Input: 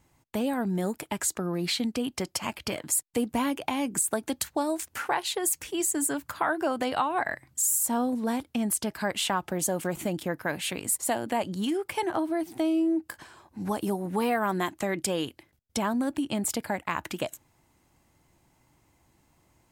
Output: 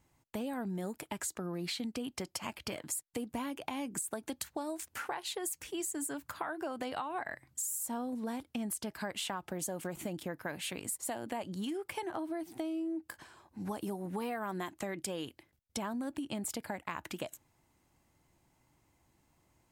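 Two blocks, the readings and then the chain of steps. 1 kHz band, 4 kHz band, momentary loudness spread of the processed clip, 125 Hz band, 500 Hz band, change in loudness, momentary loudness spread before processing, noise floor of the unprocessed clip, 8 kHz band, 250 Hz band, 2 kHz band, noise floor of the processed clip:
-10.5 dB, -8.5 dB, 4 LU, -8.5 dB, -10.0 dB, -10.0 dB, 6 LU, -68 dBFS, -10.5 dB, -9.5 dB, -9.5 dB, -74 dBFS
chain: compressor, threshold -28 dBFS, peak gain reduction 7 dB; gain -6 dB

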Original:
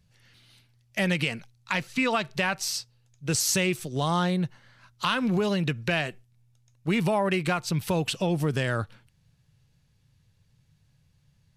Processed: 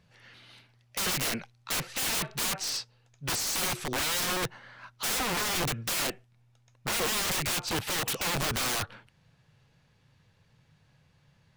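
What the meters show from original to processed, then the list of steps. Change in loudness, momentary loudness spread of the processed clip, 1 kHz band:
-2.5 dB, 9 LU, -4.0 dB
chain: overdrive pedal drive 19 dB, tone 1200 Hz, clips at -9.5 dBFS; wrapped overs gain 24.5 dB

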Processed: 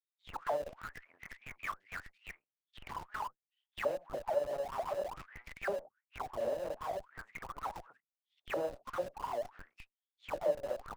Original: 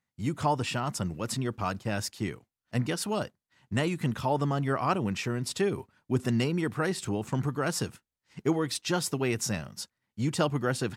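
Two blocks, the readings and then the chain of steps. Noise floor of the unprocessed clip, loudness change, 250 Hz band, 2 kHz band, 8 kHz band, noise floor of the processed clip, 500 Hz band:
under -85 dBFS, -9.0 dB, -23.5 dB, -9.5 dB, -22.5 dB, under -85 dBFS, -5.0 dB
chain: half-wave rectifier; dispersion lows, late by 0.104 s, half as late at 500 Hz; added harmonics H 2 -33 dB, 6 -41 dB, 7 -19 dB, 8 -17 dB, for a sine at -18 dBFS; auto-wah 570–3700 Hz, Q 16, down, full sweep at -32 dBFS; in parallel at -8 dB: Schmitt trigger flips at -58.5 dBFS; on the sum: gain +13 dB

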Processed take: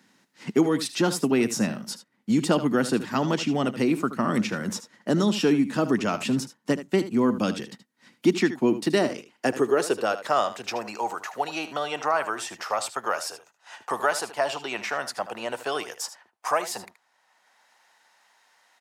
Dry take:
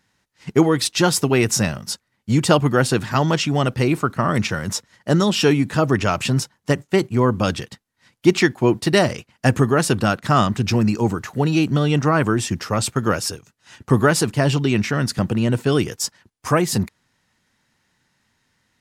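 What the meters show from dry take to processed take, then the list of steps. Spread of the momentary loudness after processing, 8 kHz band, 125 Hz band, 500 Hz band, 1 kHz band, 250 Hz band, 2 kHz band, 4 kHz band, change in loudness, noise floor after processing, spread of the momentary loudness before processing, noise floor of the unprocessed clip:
10 LU, -8.5 dB, -15.0 dB, -5.5 dB, -4.5 dB, -5.5 dB, -6.5 dB, -7.5 dB, -6.5 dB, -69 dBFS, 7 LU, -71 dBFS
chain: echo 76 ms -13.5 dB; high-pass sweep 230 Hz -> 730 Hz, 8.73–10.91; three-band squash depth 40%; gain -8 dB

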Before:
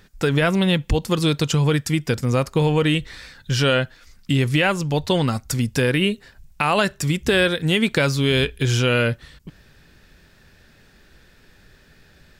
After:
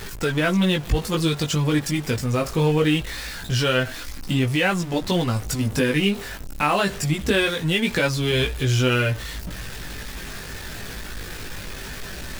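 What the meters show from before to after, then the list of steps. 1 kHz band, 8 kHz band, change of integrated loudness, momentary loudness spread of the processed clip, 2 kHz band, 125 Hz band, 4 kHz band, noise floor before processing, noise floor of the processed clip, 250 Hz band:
-1.0 dB, +0.5 dB, -2.0 dB, 14 LU, -1.5 dB, -2.0 dB, -1.5 dB, -54 dBFS, -35 dBFS, -1.0 dB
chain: zero-crossing step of -26 dBFS; chorus voices 4, 0.21 Hz, delay 18 ms, depth 2.4 ms

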